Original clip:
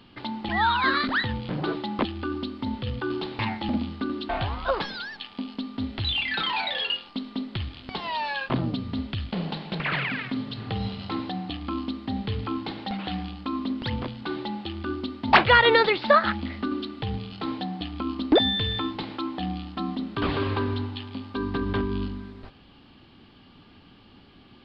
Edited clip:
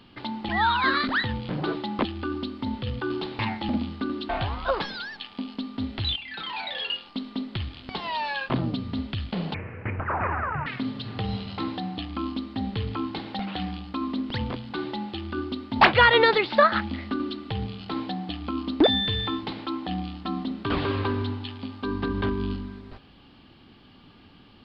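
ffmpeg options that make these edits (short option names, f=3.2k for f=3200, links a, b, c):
-filter_complex "[0:a]asplit=4[a][b][c][d];[a]atrim=end=6.16,asetpts=PTS-STARTPTS,afade=t=out:st=6.156:d=0.004:c=hsin:silence=0.211349[e];[b]atrim=start=6.16:end=9.544,asetpts=PTS-STARTPTS,afade=t=in:d=1.04:silence=0.211349[f];[c]atrim=start=9.54:end=10.18,asetpts=PTS-STARTPTS,asetrate=25137,aresample=44100[g];[d]atrim=start=10.176[h];[e][f]concat=n=2:v=0:a=1[i];[i][g]acrossfade=d=0.004:c1=hsin:c2=hsin[j];[j][h]acrossfade=d=0.004:c1=hsin:c2=hsin"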